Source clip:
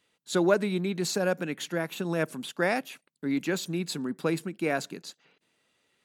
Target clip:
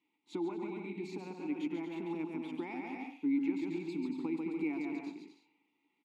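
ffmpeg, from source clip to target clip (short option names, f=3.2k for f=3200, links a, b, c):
-filter_complex "[0:a]asplit=2[a][b];[b]aecho=0:1:140|231|290.2|328.6|353.6:0.631|0.398|0.251|0.158|0.1[c];[a][c]amix=inputs=2:normalize=0,acompressor=threshold=-29dB:ratio=4,asplit=3[d][e][f];[d]bandpass=f=300:t=q:w=8,volume=0dB[g];[e]bandpass=f=870:t=q:w=8,volume=-6dB[h];[f]bandpass=f=2.24k:t=q:w=8,volume=-9dB[i];[g][h][i]amix=inputs=3:normalize=0,asplit=2[j][k];[k]adelay=100,highpass=300,lowpass=3.4k,asoftclip=type=hard:threshold=-37dB,volume=-13dB[l];[j][l]amix=inputs=2:normalize=0,volume=5.5dB"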